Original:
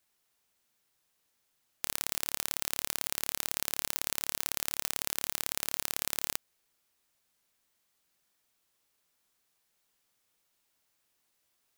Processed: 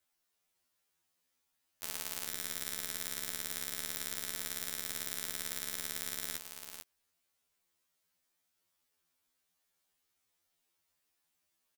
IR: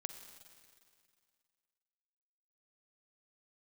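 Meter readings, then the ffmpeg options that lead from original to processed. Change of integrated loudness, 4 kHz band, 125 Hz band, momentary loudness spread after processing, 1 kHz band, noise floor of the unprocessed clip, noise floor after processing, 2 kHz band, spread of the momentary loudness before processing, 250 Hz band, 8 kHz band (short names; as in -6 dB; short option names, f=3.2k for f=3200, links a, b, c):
-5.0 dB, -4.5 dB, -4.5 dB, 5 LU, -7.5 dB, -77 dBFS, -81 dBFS, -4.0 dB, 2 LU, -3.0 dB, -4.5 dB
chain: -af "aecho=1:1:445:0.422,afftfilt=real='re*2*eq(mod(b,4),0)':imag='im*2*eq(mod(b,4),0)':win_size=2048:overlap=0.75,volume=-3dB"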